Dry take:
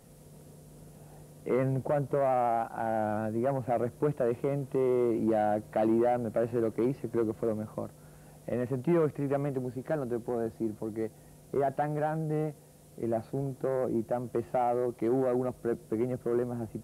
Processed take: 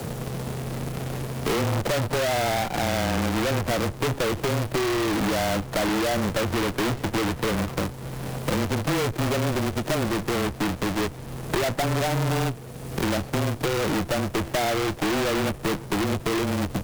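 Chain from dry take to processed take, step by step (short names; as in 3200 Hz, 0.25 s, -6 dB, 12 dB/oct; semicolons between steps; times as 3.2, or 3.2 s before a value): half-waves squared off; in parallel at -11 dB: decimation with a swept rate 13×, swing 160% 0.25 Hz; on the sum: frequency shift -20 Hz; tube stage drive 31 dB, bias 0.7; three-band squash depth 70%; gain +9 dB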